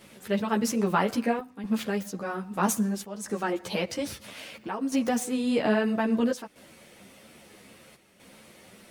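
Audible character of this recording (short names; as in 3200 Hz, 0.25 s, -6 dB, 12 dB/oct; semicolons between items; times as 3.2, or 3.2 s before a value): chopped level 0.61 Hz, depth 65%, duty 85%; a shimmering, thickened sound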